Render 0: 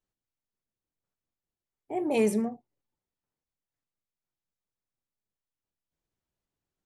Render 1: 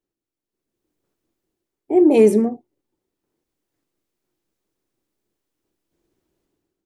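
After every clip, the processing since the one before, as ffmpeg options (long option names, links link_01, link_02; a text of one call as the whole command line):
ffmpeg -i in.wav -af "equalizer=frequency=340:width=1.5:gain=15,dynaudnorm=framelen=460:gausssize=3:maxgain=13dB,volume=-1.5dB" out.wav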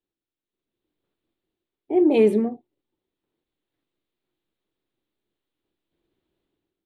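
ffmpeg -i in.wav -af "highshelf=frequency=4600:width_type=q:width=3:gain=-8,volume=-4.5dB" out.wav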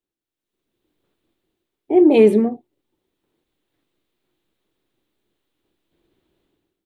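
ffmpeg -i in.wav -af "dynaudnorm=framelen=180:gausssize=5:maxgain=9dB" out.wav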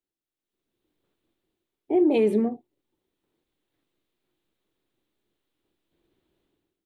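ffmpeg -i in.wav -af "alimiter=limit=-8dB:level=0:latency=1:release=110,volume=-5dB" out.wav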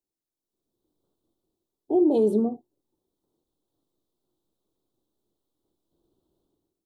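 ffmpeg -i in.wav -af "asuperstop=centerf=2100:order=4:qfactor=0.69" out.wav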